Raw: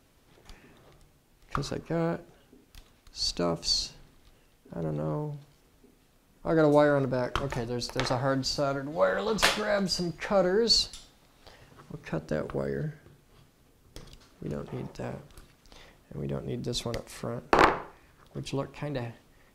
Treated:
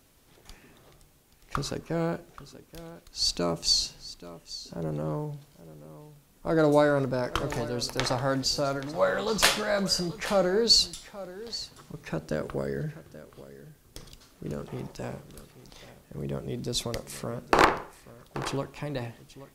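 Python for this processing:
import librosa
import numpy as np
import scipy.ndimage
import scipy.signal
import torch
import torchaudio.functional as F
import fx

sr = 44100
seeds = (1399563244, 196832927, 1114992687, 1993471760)

y = fx.high_shelf(x, sr, hz=5400.0, db=8.0)
y = y + 10.0 ** (-16.0 / 20.0) * np.pad(y, (int(830 * sr / 1000.0), 0))[:len(y)]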